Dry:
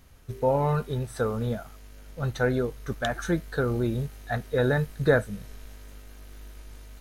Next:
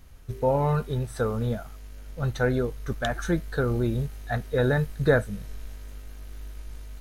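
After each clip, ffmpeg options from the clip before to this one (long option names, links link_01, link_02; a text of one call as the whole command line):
ffmpeg -i in.wav -af "lowshelf=frequency=63:gain=9" out.wav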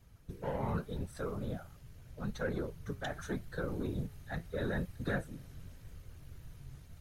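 ffmpeg -i in.wav -filter_complex "[0:a]acrossover=split=220|1200[link_01][link_02][link_03];[link_02]asoftclip=type=tanh:threshold=-24dB[link_04];[link_01][link_04][link_03]amix=inputs=3:normalize=0,afftfilt=real='hypot(re,im)*cos(2*PI*random(0))':imag='hypot(re,im)*sin(2*PI*random(1))':win_size=512:overlap=0.75,flanger=delay=1.8:depth=5.6:regen=80:speed=0.83:shape=sinusoidal" out.wav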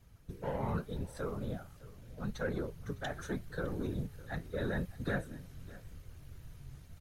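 ffmpeg -i in.wav -af "aecho=1:1:608:0.106" out.wav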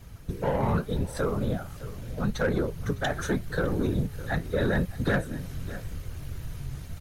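ffmpeg -i in.wav -filter_complex "[0:a]asplit=2[link_01][link_02];[link_02]acompressor=threshold=-44dB:ratio=6,volume=2dB[link_03];[link_01][link_03]amix=inputs=2:normalize=0,asoftclip=type=hard:threshold=-25dB,volume=7.5dB" out.wav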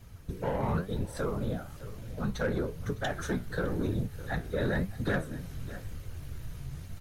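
ffmpeg -i in.wav -af "flanger=delay=8.9:depth=8.7:regen=74:speed=1:shape=sinusoidal" out.wav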